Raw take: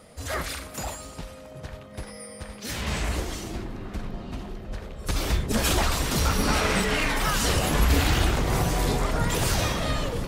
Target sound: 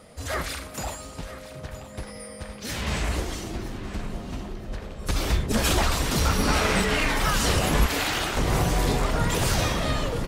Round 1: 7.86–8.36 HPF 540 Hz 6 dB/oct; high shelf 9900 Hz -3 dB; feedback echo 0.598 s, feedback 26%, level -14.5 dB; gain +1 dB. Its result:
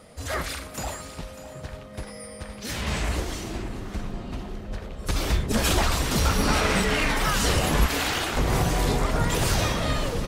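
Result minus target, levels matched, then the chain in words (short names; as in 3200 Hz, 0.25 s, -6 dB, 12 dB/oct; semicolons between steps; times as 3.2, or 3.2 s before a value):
echo 0.371 s early
7.86–8.36 HPF 540 Hz 6 dB/oct; high shelf 9900 Hz -3 dB; feedback echo 0.969 s, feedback 26%, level -14.5 dB; gain +1 dB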